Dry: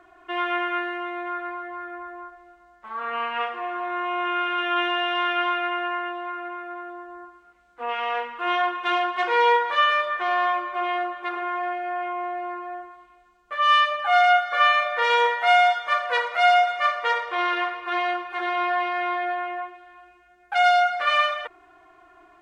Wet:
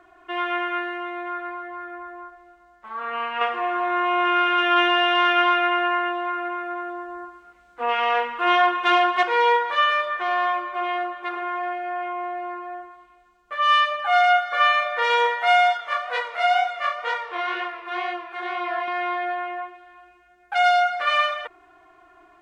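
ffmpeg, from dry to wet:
ffmpeg -i in.wav -filter_complex "[0:a]asettb=1/sr,asplit=3[link_01][link_02][link_03];[link_01]atrim=end=3.414[link_04];[link_02]atrim=start=3.41:end=9.23,asetpts=PTS-STARTPTS,afade=type=in:duration=0.004:curve=qsin,afade=type=out:start_time=5.816:duration=0.004:curve=qsin,acontrast=34[link_05];[link_03]atrim=start=9.226[link_06];[link_04][link_05]acrossfade=duration=0.004:curve1=hsin:curve2=qsin[link_07];[link_07][link_06]acrossfade=duration=0.004:curve1=qsin:curve2=hsin,asettb=1/sr,asplit=3[link_08][link_09][link_10];[link_08]atrim=end=15.774[link_11];[link_09]atrim=start=15.77:end=18.88,asetpts=PTS-STARTPTS,afade=type=in:duration=0.004:curve=qsin,afade=type=out:start_time=3.106:duration=0.004:curve=qsin,flanger=delay=20:depth=7:speed=2.1[link_12];[link_10]atrim=start=18.876[link_13];[link_11][link_12]acrossfade=duration=0.004:curve1=hsin:curve2=qsin[link_14];[link_14][link_13]acrossfade=duration=0.004:curve1=qsin:curve2=hsin" out.wav

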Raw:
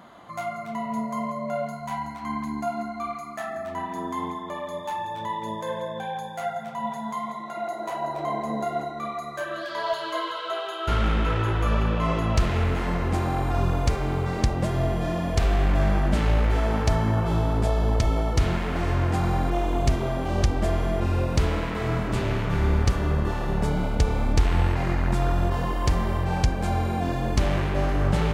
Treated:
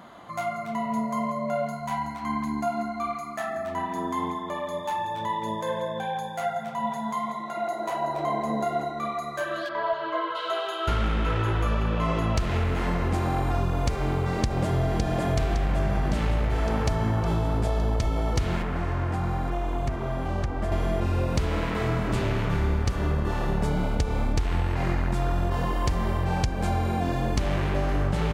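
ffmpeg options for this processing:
ffmpeg -i in.wav -filter_complex "[0:a]asplit=3[link_01][link_02][link_03];[link_01]afade=type=out:start_time=9.68:duration=0.02[link_04];[link_02]lowpass=2000,afade=type=in:start_time=9.68:duration=0.02,afade=type=out:start_time=10.34:duration=0.02[link_05];[link_03]afade=type=in:start_time=10.34:duration=0.02[link_06];[link_04][link_05][link_06]amix=inputs=3:normalize=0,asplit=2[link_07][link_08];[link_08]afade=type=in:start_time=13.94:duration=0.01,afade=type=out:start_time=14.99:duration=0.01,aecho=0:1:560|1120|1680|2240|2800|3360|3920|4480|5040|5600|6160|6720:0.668344|0.467841|0.327489|0.229242|0.160469|0.112329|0.07863|0.055041|0.0385287|0.0269701|0.0188791|0.0132153[link_09];[link_07][link_09]amix=inputs=2:normalize=0,asettb=1/sr,asplit=3[link_10][link_11][link_12];[link_10]atrim=end=18.624[link_13];[link_11]atrim=start=18.62:end=20.72,asetpts=PTS-STARTPTS,afade=type=in:duration=0.004:curve=qsin,afade=type=out:start_time=2.096:duration=0.004:curve=qsin,acrossover=split=200|800|1900[link_14][link_15][link_16][link_17];[link_14]acompressor=threshold=-28dB:ratio=3[link_18];[link_15]acompressor=threshold=-38dB:ratio=3[link_19];[link_16]acompressor=threshold=-37dB:ratio=3[link_20];[link_17]acompressor=threshold=-54dB:ratio=3[link_21];[link_18][link_19][link_20][link_21]amix=inputs=4:normalize=0[link_22];[link_12]atrim=start=20.716[link_23];[link_13][link_22]acrossfade=duration=0.004:curve1=hsin:curve2=qsin[link_24];[link_24][link_23]acrossfade=duration=0.004:curve1=qsin:curve2=hsin,acompressor=threshold=-22dB:ratio=6,volume=1.5dB" out.wav

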